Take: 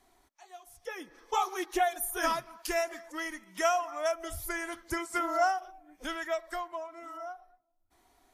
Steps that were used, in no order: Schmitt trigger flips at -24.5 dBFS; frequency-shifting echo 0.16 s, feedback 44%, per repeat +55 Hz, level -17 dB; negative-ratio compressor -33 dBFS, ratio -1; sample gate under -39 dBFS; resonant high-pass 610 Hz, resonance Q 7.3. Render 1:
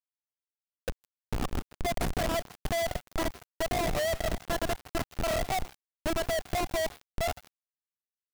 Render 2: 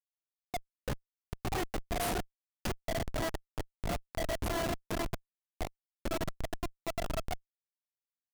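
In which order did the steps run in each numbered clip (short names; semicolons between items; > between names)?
negative-ratio compressor > resonant high-pass > Schmitt trigger > frequency-shifting echo > sample gate; resonant high-pass > negative-ratio compressor > frequency-shifting echo > sample gate > Schmitt trigger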